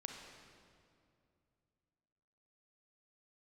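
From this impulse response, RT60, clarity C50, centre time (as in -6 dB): 2.5 s, 2.5 dB, 72 ms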